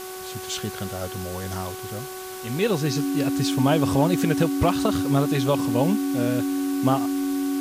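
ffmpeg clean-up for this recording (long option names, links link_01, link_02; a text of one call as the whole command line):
ffmpeg -i in.wav -af "bandreject=frequency=373.5:width_type=h:width=4,bandreject=frequency=747:width_type=h:width=4,bandreject=frequency=1120.5:width_type=h:width=4,bandreject=frequency=1494:width_type=h:width=4,bandreject=frequency=280:width=30,afwtdn=0.011" out.wav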